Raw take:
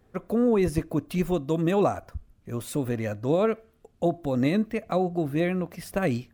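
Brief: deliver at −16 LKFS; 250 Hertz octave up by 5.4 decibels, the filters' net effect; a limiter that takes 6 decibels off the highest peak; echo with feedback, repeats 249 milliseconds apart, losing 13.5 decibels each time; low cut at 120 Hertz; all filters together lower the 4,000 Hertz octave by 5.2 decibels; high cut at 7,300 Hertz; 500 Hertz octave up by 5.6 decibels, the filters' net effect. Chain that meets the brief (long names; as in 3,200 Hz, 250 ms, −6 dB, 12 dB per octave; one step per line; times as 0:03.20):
high-pass filter 120 Hz
low-pass filter 7,300 Hz
parametric band 250 Hz +6 dB
parametric band 500 Hz +5 dB
parametric band 4,000 Hz −6 dB
brickwall limiter −12 dBFS
repeating echo 249 ms, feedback 21%, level −13.5 dB
level +7.5 dB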